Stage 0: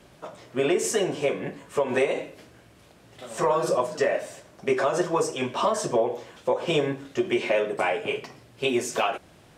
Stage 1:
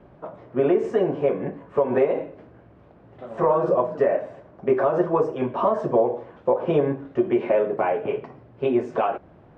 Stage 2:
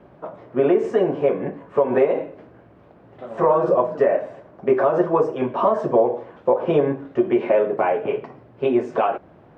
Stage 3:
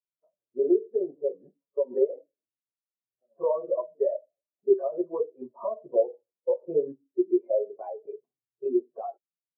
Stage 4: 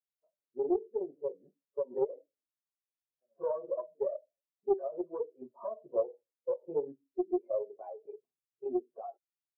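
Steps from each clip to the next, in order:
low-pass 1.1 kHz 12 dB/octave; trim +4 dB
bass shelf 100 Hz -8.5 dB; trim +3 dB
spectral contrast expander 2.5:1; trim -4 dB
loudspeaker Doppler distortion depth 0.2 ms; trim -7.5 dB

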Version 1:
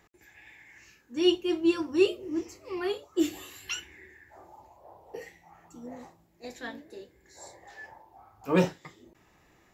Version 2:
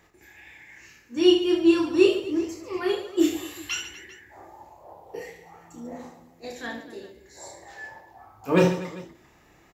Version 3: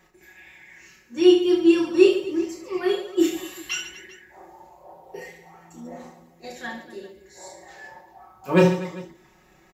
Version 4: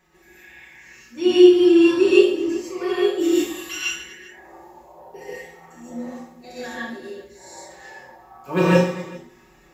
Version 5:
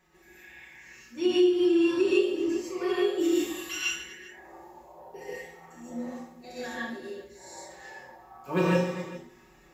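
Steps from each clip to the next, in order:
reverse bouncing-ball echo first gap 30 ms, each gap 1.5×, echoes 5; trim +3 dB
comb 5.4 ms, depth 80%; trim -1.5 dB
gated-style reverb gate 180 ms rising, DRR -7.5 dB; trim -5 dB
compression 2.5:1, threshold -18 dBFS, peak gain reduction 8.5 dB; trim -4 dB

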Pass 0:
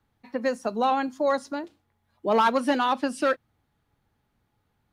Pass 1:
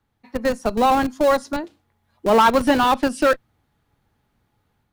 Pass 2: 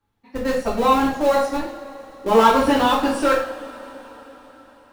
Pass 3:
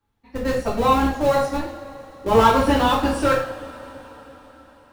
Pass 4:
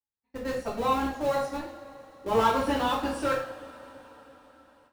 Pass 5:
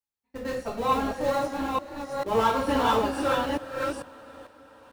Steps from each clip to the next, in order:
level rider gain up to 5 dB; in parallel at -4.5 dB: Schmitt trigger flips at -20 dBFS
two-slope reverb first 0.52 s, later 4.8 s, from -22 dB, DRR -6.5 dB; trim -7 dB
octave divider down 2 oct, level -4 dB; trim -1 dB
bass shelf 120 Hz -8.5 dB; gate with hold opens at -41 dBFS; trim -8 dB
chunks repeated in reverse 447 ms, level -2 dB

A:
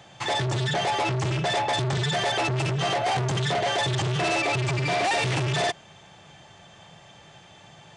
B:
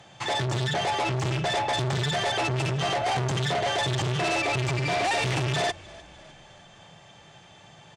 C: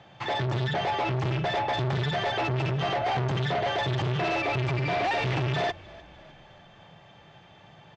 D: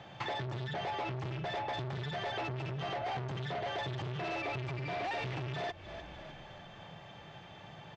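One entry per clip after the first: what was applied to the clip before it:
frequency-shifting echo 303 ms, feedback 55%, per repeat -35 Hz, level -22 dB; Chebyshev shaper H 2 -20 dB, 3 -21 dB, 5 -32 dB, 8 -40 dB, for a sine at -15.5 dBFS
distance through air 200 m
compression 5:1, threshold -38 dBFS, peak gain reduction 13.5 dB; trim +1.5 dB

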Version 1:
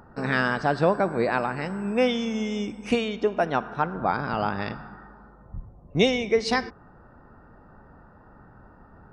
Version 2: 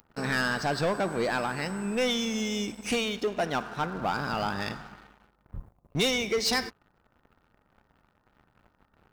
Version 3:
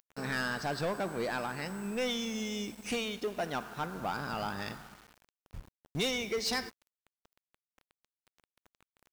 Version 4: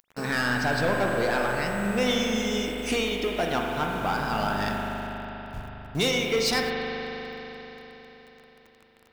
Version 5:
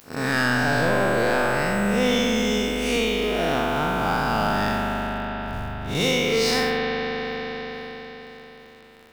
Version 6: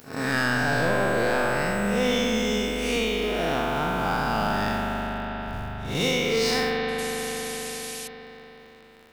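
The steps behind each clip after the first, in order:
pre-emphasis filter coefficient 0.8; waveshaping leveller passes 3
word length cut 8-bit, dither none; trim -6 dB
reverberation RT60 4.3 s, pre-delay 40 ms, DRR 0 dB; trim +6.5 dB
spectral blur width 142 ms; in parallel at +3 dB: compression, threshold -37 dBFS, peak gain reduction 14 dB; on the sum: trim +3 dB
painted sound noise, 6.98–8.08 s, 2.2–12 kHz -35 dBFS; pre-echo 102 ms -15 dB; trim -2.5 dB

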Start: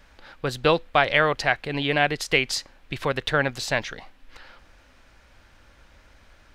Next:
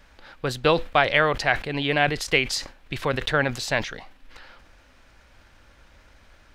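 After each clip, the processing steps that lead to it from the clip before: decay stretcher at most 140 dB/s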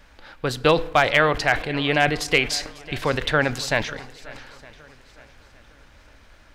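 shuffle delay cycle 912 ms, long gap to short 1.5:1, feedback 32%, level -20 dB; FDN reverb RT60 1.2 s, high-frequency decay 0.5×, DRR 17 dB; hard clipper -8 dBFS, distortion -23 dB; trim +2 dB

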